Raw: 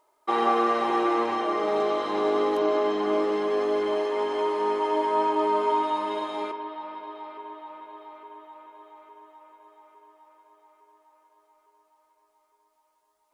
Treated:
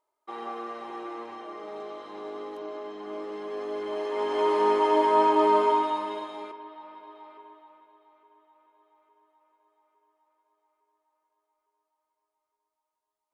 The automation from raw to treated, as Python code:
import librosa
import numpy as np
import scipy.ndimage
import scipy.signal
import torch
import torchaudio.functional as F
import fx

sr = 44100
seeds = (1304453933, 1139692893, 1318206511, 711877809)

y = fx.gain(x, sr, db=fx.line((2.92, -14.0), (3.88, -7.0), (4.53, 3.0), (5.56, 3.0), (6.42, -8.0), (7.35, -8.0), (7.98, -15.5)))